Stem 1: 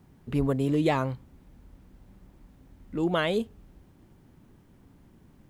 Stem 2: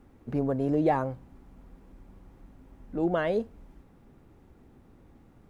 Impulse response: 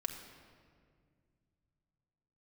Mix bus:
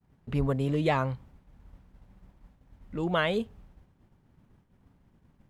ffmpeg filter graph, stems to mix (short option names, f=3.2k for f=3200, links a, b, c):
-filter_complex "[0:a]aemphasis=mode=reproduction:type=cd,volume=1.5dB[a];[1:a]volume=-1,volume=-13.5dB[b];[a][b]amix=inputs=2:normalize=0,agate=range=-33dB:threshold=-47dB:ratio=3:detection=peak,equalizer=f=320:t=o:w=0.81:g=-6.5"